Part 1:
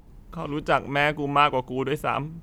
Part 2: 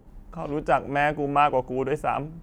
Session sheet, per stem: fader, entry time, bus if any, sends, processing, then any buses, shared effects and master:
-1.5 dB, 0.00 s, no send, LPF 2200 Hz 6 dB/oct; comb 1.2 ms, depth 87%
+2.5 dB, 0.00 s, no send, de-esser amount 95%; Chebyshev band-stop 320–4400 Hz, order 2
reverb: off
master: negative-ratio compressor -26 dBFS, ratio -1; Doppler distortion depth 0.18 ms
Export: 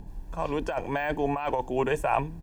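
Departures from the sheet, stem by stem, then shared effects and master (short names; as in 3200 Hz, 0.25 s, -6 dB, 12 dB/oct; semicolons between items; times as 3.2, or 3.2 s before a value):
stem 2: polarity flipped; master: missing Doppler distortion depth 0.18 ms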